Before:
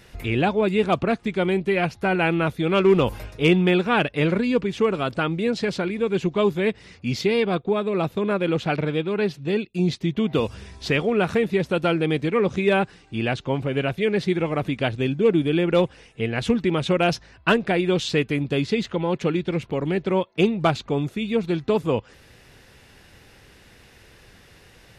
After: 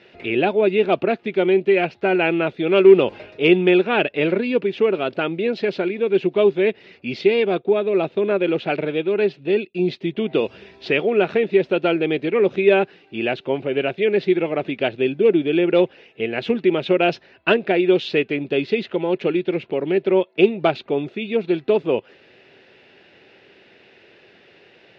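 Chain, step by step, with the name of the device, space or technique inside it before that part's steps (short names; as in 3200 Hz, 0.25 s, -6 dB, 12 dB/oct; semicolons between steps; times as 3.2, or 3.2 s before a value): kitchen radio (speaker cabinet 220–4100 Hz, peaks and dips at 380 Hz +8 dB, 620 Hz +5 dB, 1100 Hz -6 dB, 2600 Hz +5 dB)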